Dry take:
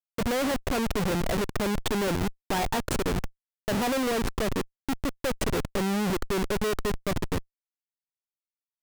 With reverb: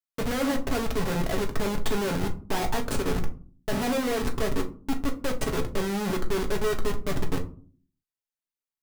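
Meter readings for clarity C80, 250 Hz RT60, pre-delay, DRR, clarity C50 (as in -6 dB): 19.5 dB, 0.70 s, 5 ms, 2.0 dB, 13.5 dB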